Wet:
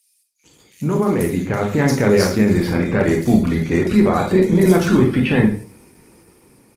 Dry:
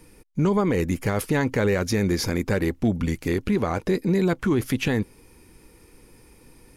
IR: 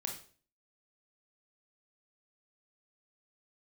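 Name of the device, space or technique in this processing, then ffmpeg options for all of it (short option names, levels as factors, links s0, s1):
far-field microphone of a smart speaker: -filter_complex "[0:a]asplit=3[s0][s1][s2];[s0]afade=t=out:st=1:d=0.02[s3];[s1]equalizer=f=4700:t=o:w=0.24:g=-3.5,afade=t=in:st=1:d=0.02,afade=t=out:st=1.73:d=0.02[s4];[s2]afade=t=in:st=1.73:d=0.02[s5];[s3][s4][s5]amix=inputs=3:normalize=0,acrossover=split=3500[s6][s7];[s6]adelay=440[s8];[s8][s7]amix=inputs=2:normalize=0[s9];[1:a]atrim=start_sample=2205[s10];[s9][s10]afir=irnorm=-1:irlink=0,highpass=89,dynaudnorm=f=380:g=7:m=2.66,volume=1.12" -ar 48000 -c:a libopus -b:a 16k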